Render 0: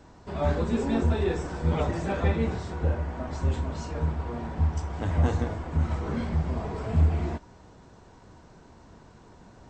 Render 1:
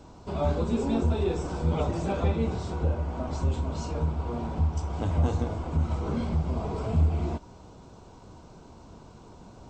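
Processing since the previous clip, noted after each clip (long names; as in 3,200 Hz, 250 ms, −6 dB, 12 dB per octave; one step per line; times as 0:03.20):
parametric band 1,800 Hz −13 dB 0.39 octaves
in parallel at +1 dB: downward compressor, threshold −31 dBFS, peak gain reduction 14 dB
on the sum: level −3.5 dB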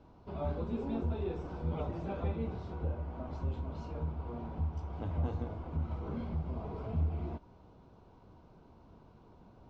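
high-frequency loss of the air 230 metres
level −9 dB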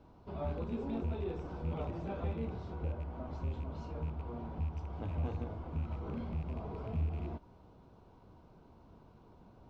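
loose part that buzzes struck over −34 dBFS, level −45 dBFS
in parallel at −7 dB: soft clipping −34 dBFS, distortion −11 dB
on the sum: level −4 dB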